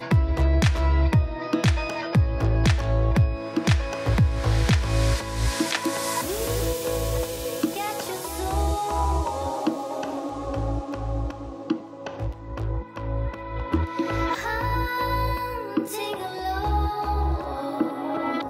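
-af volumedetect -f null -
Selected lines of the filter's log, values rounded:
mean_volume: -24.2 dB
max_volume: -9.0 dB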